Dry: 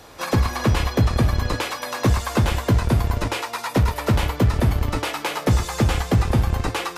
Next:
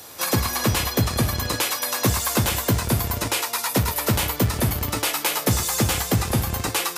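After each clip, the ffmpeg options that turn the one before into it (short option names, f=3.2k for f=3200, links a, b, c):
-af "highpass=86,aemphasis=mode=production:type=75fm,volume=-1dB"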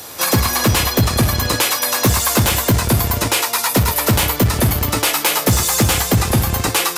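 -af "asoftclip=type=tanh:threshold=-14dB,volume=8dB"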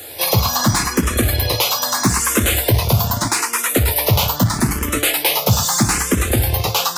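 -filter_complex "[0:a]asplit=2[a][b];[b]afreqshift=0.79[c];[a][c]amix=inputs=2:normalize=1,volume=2dB"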